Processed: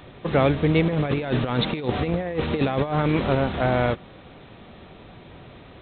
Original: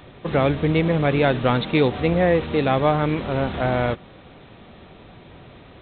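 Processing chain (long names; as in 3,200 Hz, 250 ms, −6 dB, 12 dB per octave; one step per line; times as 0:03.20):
0:00.87–0:03.35: compressor whose output falls as the input rises −22 dBFS, ratio −0.5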